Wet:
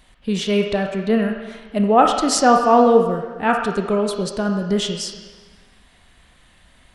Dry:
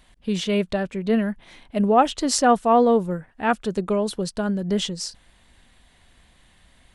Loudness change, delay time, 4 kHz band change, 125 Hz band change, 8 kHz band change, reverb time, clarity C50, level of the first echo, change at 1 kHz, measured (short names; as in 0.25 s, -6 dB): +4.0 dB, none, +3.5 dB, +2.5 dB, +2.5 dB, 1.3 s, 4.0 dB, none, +4.5 dB